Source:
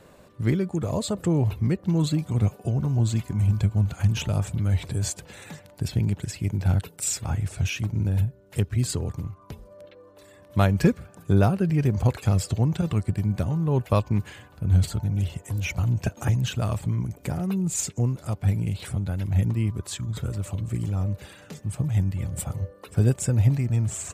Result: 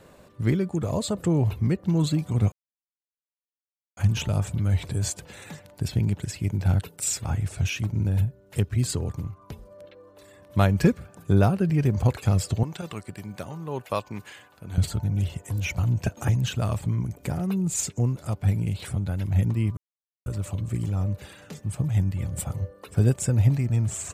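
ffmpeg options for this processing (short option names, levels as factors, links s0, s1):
-filter_complex "[0:a]asettb=1/sr,asplit=3[s0][s1][s2];[s0]atrim=end=12.634[s3];[s1]atrim=start=12.63:end=14.78,asetpts=PTS-STARTPTS,afade=t=in:d=0.004:c=qsin,afade=t=out:st=2.146:d=0.004:c=qsin,highpass=f=630:p=1[s4];[s2]atrim=start=14.776[s5];[s3][s4]acrossfade=d=0.004:c1=hsin:c2=qsin[s6];[s6][s5]acrossfade=d=0.004:c1=qsin:c2=hsin,asplit=5[s7][s8][s9][s10][s11];[s7]atrim=end=2.52,asetpts=PTS-STARTPTS,afade=t=out:st=2.516:d=0.004:c=hsin[s12];[s8]atrim=start=2.52:end=3.97,asetpts=PTS-STARTPTS,volume=0[s13];[s9]atrim=start=3.97:end=19.77,asetpts=PTS-STARTPTS,afade=t=in:d=0.004:c=hsin,afade=t=out:st=15.796:d=0.004:c=hsin[s14];[s10]atrim=start=19.77:end=20.26,asetpts=PTS-STARTPTS,volume=0[s15];[s11]atrim=start=20.26,asetpts=PTS-STARTPTS,afade=t=in:d=0.004:c=hsin[s16];[s12][s13][s14][s15][s16]concat=n=5:v=0:a=1"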